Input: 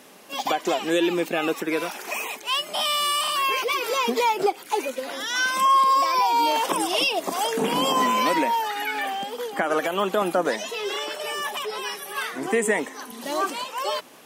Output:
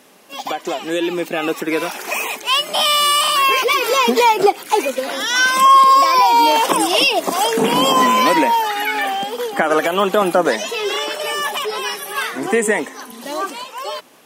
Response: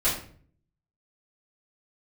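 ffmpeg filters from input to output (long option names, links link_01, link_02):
-af "dynaudnorm=framelen=160:gausssize=21:maxgain=11.5dB"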